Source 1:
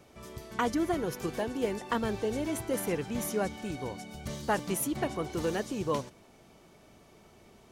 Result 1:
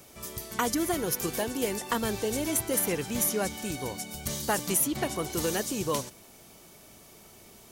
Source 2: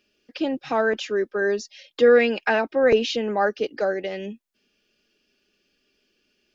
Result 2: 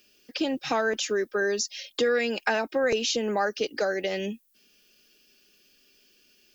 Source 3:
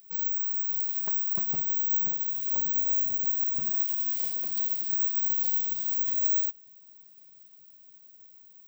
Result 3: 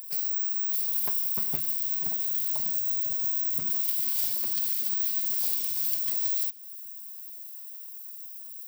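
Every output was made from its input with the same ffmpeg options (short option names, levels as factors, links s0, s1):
-filter_complex "[0:a]aemphasis=mode=production:type=75fm,acrossover=split=1500|5600[s0][s1][s2];[s0]acompressor=threshold=0.0447:ratio=4[s3];[s1]acompressor=threshold=0.0158:ratio=4[s4];[s2]acompressor=threshold=0.0355:ratio=4[s5];[s3][s4][s5]amix=inputs=3:normalize=0,volume=1.33"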